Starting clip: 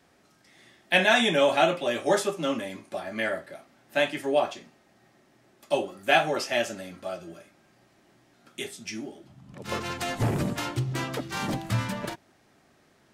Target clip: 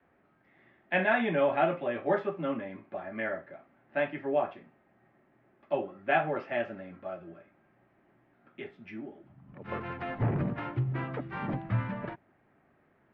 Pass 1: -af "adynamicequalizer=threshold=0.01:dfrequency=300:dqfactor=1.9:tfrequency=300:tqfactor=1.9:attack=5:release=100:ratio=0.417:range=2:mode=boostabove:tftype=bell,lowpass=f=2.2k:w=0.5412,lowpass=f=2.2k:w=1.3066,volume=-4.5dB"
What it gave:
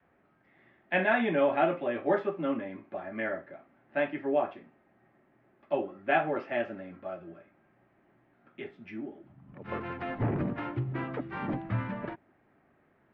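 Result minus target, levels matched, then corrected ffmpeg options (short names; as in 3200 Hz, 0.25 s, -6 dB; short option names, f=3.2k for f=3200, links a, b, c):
125 Hz band -3.0 dB
-af "adynamicequalizer=threshold=0.01:dfrequency=140:dqfactor=1.9:tfrequency=140:tqfactor=1.9:attack=5:release=100:ratio=0.417:range=2:mode=boostabove:tftype=bell,lowpass=f=2.2k:w=0.5412,lowpass=f=2.2k:w=1.3066,volume=-4.5dB"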